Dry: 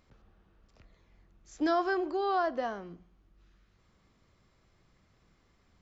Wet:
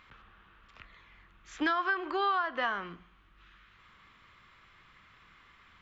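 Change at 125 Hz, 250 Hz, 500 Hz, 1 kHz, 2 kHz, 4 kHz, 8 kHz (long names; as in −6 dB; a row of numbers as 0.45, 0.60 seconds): −0.5 dB, −4.0 dB, −6.0 dB, +1.0 dB, +7.0 dB, +5.5 dB, can't be measured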